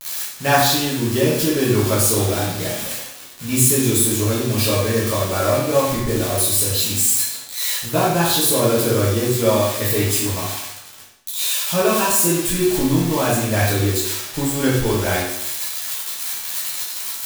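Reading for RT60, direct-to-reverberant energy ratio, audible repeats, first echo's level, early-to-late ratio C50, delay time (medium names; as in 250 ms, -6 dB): 0.80 s, -8.0 dB, no echo, no echo, 1.0 dB, no echo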